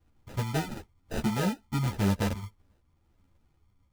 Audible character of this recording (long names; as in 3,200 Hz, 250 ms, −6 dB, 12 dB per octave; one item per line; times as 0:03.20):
phaser sweep stages 6, 1 Hz, lowest notch 510–2,700 Hz
aliases and images of a low sample rate 1,100 Hz, jitter 0%
a shimmering, thickened sound